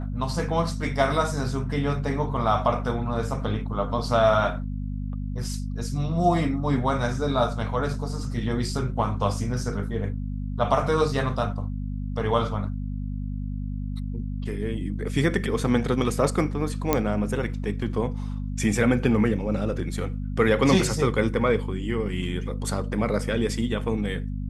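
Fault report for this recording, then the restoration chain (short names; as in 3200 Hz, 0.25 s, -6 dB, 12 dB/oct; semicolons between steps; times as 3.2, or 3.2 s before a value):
hum 50 Hz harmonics 5 -30 dBFS
16.93 pop -6 dBFS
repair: de-click; de-hum 50 Hz, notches 5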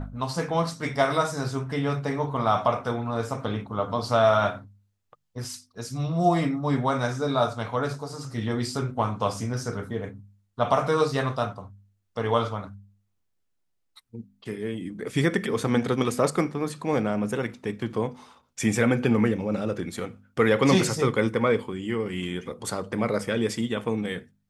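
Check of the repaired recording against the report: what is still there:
none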